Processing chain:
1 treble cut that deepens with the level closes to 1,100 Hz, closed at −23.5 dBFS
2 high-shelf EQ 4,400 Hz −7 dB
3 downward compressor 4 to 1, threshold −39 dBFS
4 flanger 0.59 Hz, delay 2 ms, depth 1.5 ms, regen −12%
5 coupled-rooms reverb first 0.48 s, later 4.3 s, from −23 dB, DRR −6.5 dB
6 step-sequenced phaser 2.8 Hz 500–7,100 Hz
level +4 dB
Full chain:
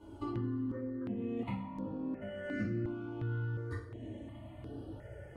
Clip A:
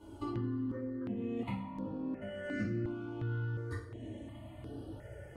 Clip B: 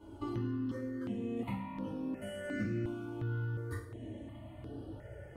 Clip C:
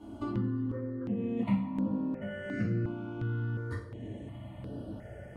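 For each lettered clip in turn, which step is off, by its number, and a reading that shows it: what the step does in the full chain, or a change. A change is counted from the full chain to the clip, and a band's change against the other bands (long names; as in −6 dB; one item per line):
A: 2, 4 kHz band +2.0 dB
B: 1, 4 kHz band +3.5 dB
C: 4, change in integrated loudness +5.0 LU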